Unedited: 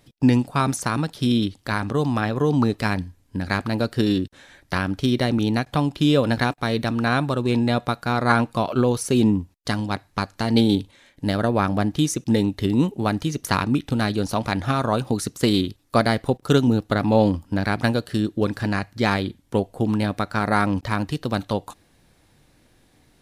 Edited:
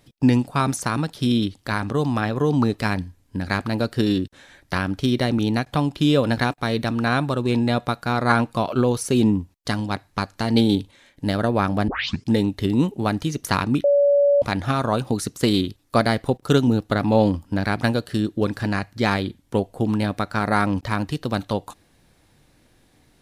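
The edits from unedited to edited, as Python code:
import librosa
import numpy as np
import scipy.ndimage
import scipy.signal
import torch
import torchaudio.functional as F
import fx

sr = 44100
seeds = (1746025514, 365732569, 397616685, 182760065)

y = fx.edit(x, sr, fx.tape_start(start_s=11.88, length_s=0.41),
    fx.bleep(start_s=13.84, length_s=0.58, hz=570.0, db=-13.0), tone=tone)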